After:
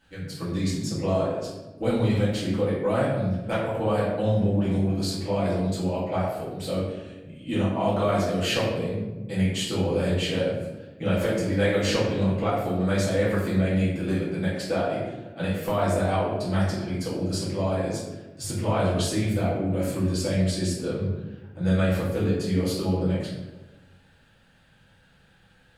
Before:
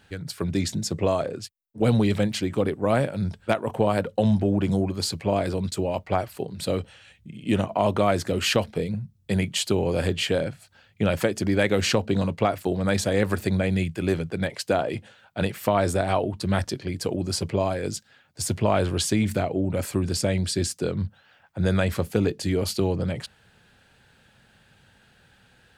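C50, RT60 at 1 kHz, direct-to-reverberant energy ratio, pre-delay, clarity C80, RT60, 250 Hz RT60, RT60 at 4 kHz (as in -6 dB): 1.5 dB, 1.0 s, -9.0 dB, 4 ms, 4.0 dB, 1.2 s, 1.5 s, 0.65 s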